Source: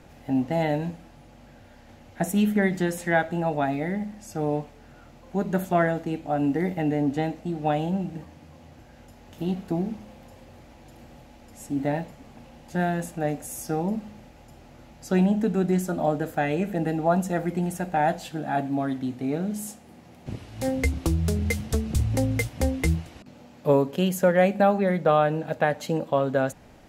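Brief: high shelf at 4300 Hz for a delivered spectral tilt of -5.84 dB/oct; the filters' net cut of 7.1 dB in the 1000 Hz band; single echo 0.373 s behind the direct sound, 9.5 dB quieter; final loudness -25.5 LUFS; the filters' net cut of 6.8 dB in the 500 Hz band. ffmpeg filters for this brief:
-af "equalizer=f=500:t=o:g=-6.5,equalizer=f=1k:t=o:g=-7,highshelf=f=4.3k:g=-3.5,aecho=1:1:373:0.335,volume=3dB"

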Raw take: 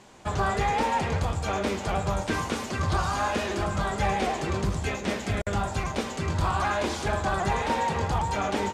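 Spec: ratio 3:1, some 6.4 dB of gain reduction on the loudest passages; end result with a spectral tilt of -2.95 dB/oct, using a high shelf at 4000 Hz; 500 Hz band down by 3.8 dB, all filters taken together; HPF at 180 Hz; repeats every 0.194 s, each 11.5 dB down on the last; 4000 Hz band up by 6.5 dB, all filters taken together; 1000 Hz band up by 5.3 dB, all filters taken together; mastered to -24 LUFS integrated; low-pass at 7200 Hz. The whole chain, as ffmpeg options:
-af "highpass=180,lowpass=7.2k,equalizer=f=500:t=o:g=-8,equalizer=f=1k:t=o:g=8.5,highshelf=f=4k:g=4.5,equalizer=f=4k:t=o:g=5.5,acompressor=threshold=-26dB:ratio=3,aecho=1:1:194|388|582:0.266|0.0718|0.0194,volume=4.5dB"

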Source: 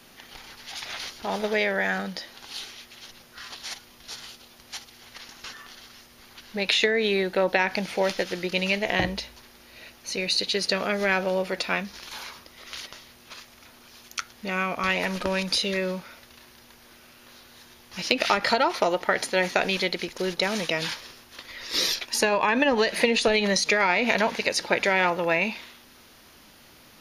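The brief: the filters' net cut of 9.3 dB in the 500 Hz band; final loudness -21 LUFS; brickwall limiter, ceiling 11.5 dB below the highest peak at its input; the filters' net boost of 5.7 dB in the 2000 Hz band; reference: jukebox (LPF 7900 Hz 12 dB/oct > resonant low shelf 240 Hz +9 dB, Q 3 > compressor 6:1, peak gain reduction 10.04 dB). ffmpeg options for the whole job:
-af "equalizer=f=500:t=o:g=-9,equalizer=f=2k:t=o:g=7.5,alimiter=limit=-12.5dB:level=0:latency=1,lowpass=7.9k,lowshelf=f=240:t=q:w=3:g=9,acompressor=threshold=-23dB:ratio=6,volume=6.5dB"

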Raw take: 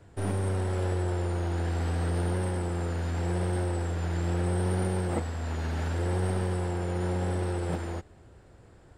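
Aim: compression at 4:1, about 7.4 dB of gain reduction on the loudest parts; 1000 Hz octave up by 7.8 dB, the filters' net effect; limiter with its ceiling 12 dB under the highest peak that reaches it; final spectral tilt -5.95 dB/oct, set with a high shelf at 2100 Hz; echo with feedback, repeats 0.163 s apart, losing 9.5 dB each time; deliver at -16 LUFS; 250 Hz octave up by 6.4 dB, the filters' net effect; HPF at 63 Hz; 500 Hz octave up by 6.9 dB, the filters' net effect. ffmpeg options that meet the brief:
-af "highpass=63,equalizer=f=250:t=o:g=8,equalizer=f=500:t=o:g=4,equalizer=f=1k:t=o:g=6.5,highshelf=f=2.1k:g=8.5,acompressor=threshold=-29dB:ratio=4,alimiter=level_in=7.5dB:limit=-24dB:level=0:latency=1,volume=-7.5dB,aecho=1:1:163|326|489|652:0.335|0.111|0.0365|0.012,volume=23.5dB"

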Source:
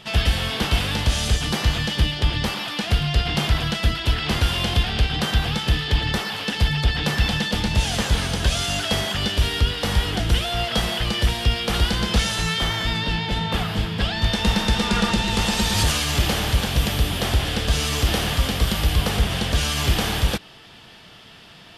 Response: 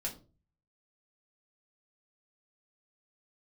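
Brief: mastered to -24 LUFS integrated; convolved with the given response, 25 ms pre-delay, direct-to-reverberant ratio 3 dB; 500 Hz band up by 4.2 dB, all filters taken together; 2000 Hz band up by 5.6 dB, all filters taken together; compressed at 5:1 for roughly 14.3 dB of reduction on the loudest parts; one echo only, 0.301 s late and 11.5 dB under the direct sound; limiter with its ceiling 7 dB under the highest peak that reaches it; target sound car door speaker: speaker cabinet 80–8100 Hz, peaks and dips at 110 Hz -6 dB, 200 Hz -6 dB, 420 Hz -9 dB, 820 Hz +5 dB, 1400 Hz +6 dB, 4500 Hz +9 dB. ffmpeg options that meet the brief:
-filter_complex "[0:a]equalizer=f=500:t=o:g=8,equalizer=f=2k:t=o:g=4.5,acompressor=threshold=-30dB:ratio=5,alimiter=limit=-23.5dB:level=0:latency=1,aecho=1:1:301:0.266,asplit=2[a][b];[1:a]atrim=start_sample=2205,adelay=25[c];[b][c]afir=irnorm=-1:irlink=0,volume=-4dB[d];[a][d]amix=inputs=2:normalize=0,highpass=80,equalizer=f=110:t=q:w=4:g=-6,equalizer=f=200:t=q:w=4:g=-6,equalizer=f=420:t=q:w=4:g=-9,equalizer=f=820:t=q:w=4:g=5,equalizer=f=1.4k:t=q:w=4:g=6,equalizer=f=4.5k:t=q:w=4:g=9,lowpass=f=8.1k:w=0.5412,lowpass=f=8.1k:w=1.3066,volume=6dB"

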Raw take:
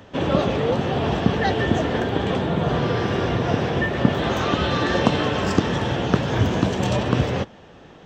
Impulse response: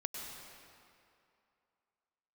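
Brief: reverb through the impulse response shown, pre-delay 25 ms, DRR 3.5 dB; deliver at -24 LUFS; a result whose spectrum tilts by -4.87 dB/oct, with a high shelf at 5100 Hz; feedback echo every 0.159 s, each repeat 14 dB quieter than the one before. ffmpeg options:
-filter_complex "[0:a]highshelf=f=5.1k:g=6,aecho=1:1:159|318:0.2|0.0399,asplit=2[a][b];[1:a]atrim=start_sample=2205,adelay=25[c];[b][c]afir=irnorm=-1:irlink=0,volume=-4dB[d];[a][d]amix=inputs=2:normalize=0,volume=-4dB"

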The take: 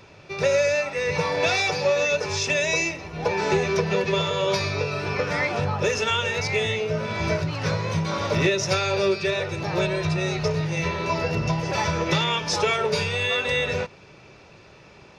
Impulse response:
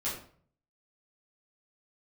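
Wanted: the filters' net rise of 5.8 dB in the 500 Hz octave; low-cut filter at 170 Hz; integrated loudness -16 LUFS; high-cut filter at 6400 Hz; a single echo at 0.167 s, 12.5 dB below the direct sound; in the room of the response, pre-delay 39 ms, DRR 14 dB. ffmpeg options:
-filter_complex "[0:a]highpass=170,lowpass=6.4k,equalizer=f=500:t=o:g=7,aecho=1:1:167:0.237,asplit=2[a][b];[1:a]atrim=start_sample=2205,adelay=39[c];[b][c]afir=irnorm=-1:irlink=0,volume=-18.5dB[d];[a][d]amix=inputs=2:normalize=0,volume=4.5dB"

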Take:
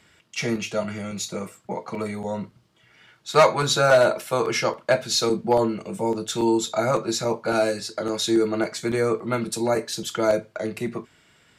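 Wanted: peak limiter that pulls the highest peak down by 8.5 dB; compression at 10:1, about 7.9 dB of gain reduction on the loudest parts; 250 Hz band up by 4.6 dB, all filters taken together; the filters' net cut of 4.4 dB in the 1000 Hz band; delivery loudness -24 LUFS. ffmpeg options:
-af "equalizer=f=250:t=o:g=7,equalizer=f=1k:t=o:g=-6.5,acompressor=threshold=-20dB:ratio=10,volume=5dB,alimiter=limit=-14.5dB:level=0:latency=1"

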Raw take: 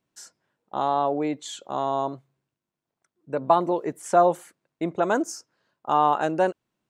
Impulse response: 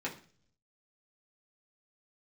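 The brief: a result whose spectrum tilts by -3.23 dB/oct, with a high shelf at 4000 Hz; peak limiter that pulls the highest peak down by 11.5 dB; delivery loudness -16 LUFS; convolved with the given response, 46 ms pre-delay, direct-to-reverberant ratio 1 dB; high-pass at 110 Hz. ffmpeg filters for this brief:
-filter_complex "[0:a]highpass=110,highshelf=f=4k:g=-6,alimiter=limit=-17dB:level=0:latency=1,asplit=2[a][b];[1:a]atrim=start_sample=2205,adelay=46[c];[b][c]afir=irnorm=-1:irlink=0,volume=-4.5dB[d];[a][d]amix=inputs=2:normalize=0,volume=10.5dB"

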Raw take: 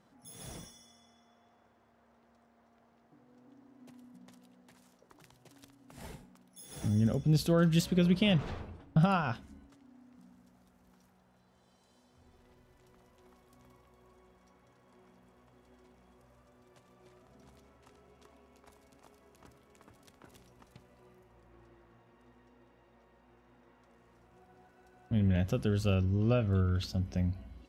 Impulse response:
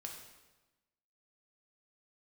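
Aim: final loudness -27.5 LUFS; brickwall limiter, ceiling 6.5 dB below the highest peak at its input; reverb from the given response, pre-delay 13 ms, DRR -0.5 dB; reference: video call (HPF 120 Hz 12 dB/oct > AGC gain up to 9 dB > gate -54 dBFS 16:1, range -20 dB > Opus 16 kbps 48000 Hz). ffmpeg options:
-filter_complex "[0:a]alimiter=limit=-22dB:level=0:latency=1,asplit=2[a][b];[1:a]atrim=start_sample=2205,adelay=13[c];[b][c]afir=irnorm=-1:irlink=0,volume=3.5dB[d];[a][d]amix=inputs=2:normalize=0,highpass=120,dynaudnorm=m=9dB,agate=range=-20dB:threshold=-54dB:ratio=16,volume=-1.5dB" -ar 48000 -c:a libopus -b:a 16k

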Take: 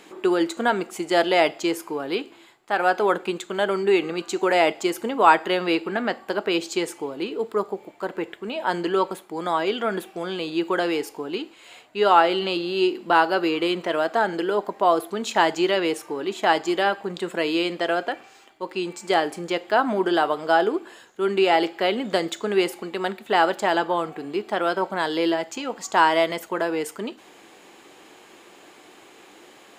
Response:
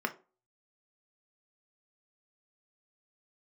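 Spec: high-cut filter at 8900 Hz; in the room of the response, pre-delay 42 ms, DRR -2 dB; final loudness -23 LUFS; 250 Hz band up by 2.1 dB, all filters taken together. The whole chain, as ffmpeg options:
-filter_complex "[0:a]lowpass=8.9k,equalizer=f=250:t=o:g=3.5,asplit=2[a][b];[1:a]atrim=start_sample=2205,adelay=42[c];[b][c]afir=irnorm=-1:irlink=0,volume=-4.5dB[d];[a][d]amix=inputs=2:normalize=0,volume=-4dB"

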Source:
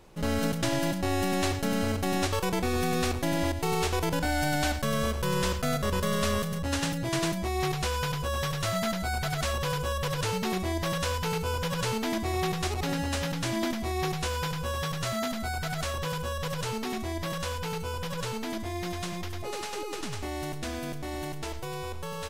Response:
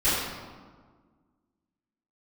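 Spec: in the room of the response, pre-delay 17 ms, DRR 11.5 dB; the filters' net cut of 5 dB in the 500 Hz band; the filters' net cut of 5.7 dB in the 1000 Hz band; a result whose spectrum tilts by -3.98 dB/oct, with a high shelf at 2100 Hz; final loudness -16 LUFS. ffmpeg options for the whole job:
-filter_complex "[0:a]equalizer=f=500:t=o:g=-5,equalizer=f=1k:t=o:g=-6.5,highshelf=f=2.1k:g=3,asplit=2[a][b];[1:a]atrim=start_sample=2205,adelay=17[c];[b][c]afir=irnorm=-1:irlink=0,volume=-26.5dB[d];[a][d]amix=inputs=2:normalize=0,volume=14.5dB"

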